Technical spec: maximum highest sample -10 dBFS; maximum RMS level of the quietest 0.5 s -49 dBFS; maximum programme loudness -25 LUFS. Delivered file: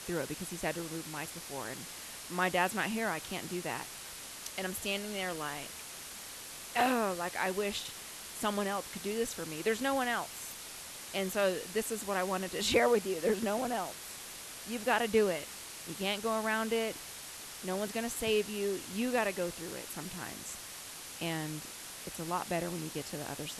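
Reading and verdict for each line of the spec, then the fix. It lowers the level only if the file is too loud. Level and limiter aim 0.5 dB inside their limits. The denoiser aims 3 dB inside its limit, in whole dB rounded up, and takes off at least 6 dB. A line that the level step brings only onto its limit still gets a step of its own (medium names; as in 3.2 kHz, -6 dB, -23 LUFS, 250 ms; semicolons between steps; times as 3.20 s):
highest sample -14.0 dBFS: pass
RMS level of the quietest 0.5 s -46 dBFS: fail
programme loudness -35.0 LUFS: pass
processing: noise reduction 6 dB, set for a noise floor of -46 dBFS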